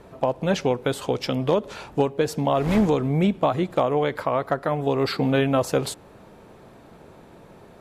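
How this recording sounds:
background noise floor −49 dBFS
spectral slope −5.5 dB per octave

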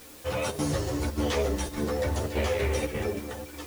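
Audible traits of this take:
chopped level 1.7 Hz, depth 65%, duty 85%
a quantiser's noise floor 8 bits, dither triangular
a shimmering, thickened sound

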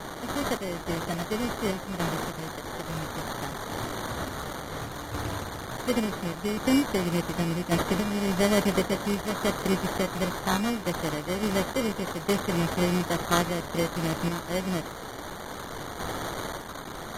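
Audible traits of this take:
a quantiser's noise floor 6 bits, dither triangular
sample-and-hold tremolo
aliases and images of a low sample rate 2,600 Hz, jitter 0%
AAC

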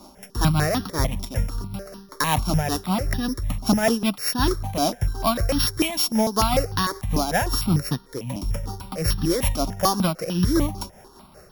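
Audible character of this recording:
a buzz of ramps at a fixed pitch in blocks of 8 samples
tremolo triangle 5.2 Hz, depth 60%
notches that jump at a steady rate 6.7 Hz 480–2,200 Hz

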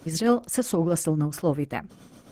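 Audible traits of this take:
tremolo triangle 7.5 Hz, depth 65%
Opus

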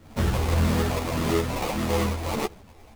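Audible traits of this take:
phaser sweep stages 12, 1.7 Hz, lowest notch 180–2,600 Hz
aliases and images of a low sample rate 1,600 Hz, jitter 20%
a shimmering, thickened sound

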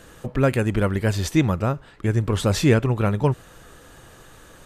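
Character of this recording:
background noise floor −48 dBFS
spectral slope −6.5 dB per octave

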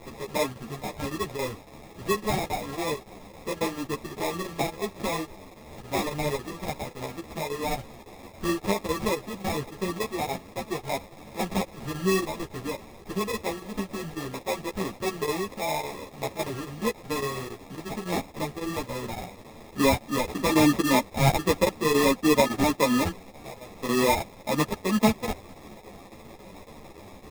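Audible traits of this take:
a quantiser's noise floor 8 bits, dither triangular
chopped level 3.6 Hz, depth 65%, duty 90%
aliases and images of a low sample rate 1,500 Hz, jitter 0%
a shimmering, thickened sound

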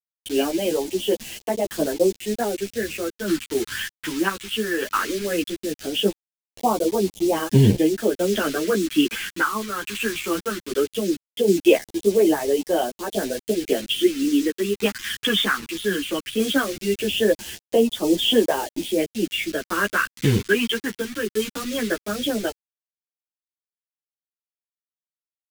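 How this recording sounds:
a quantiser's noise floor 6 bits, dither none
phaser sweep stages 2, 0.18 Hz, lowest notch 620–1,400 Hz
tremolo saw down 0.61 Hz, depth 40%
a shimmering, thickened sound

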